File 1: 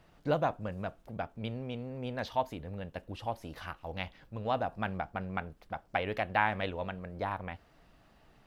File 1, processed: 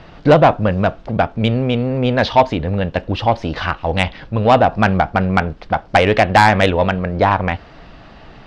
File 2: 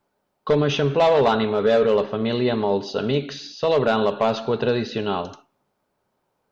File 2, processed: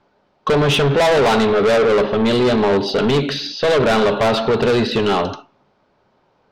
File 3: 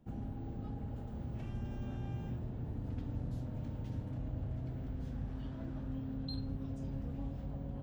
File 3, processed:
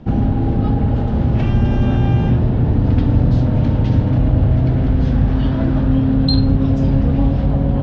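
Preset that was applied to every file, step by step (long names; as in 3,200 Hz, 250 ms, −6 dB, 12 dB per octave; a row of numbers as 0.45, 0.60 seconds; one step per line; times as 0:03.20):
low-pass filter 5,100 Hz 24 dB per octave
soft clipping −24.5 dBFS
loudness normalisation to −16 LKFS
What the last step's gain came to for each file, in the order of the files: +22.0, +12.5, +26.0 decibels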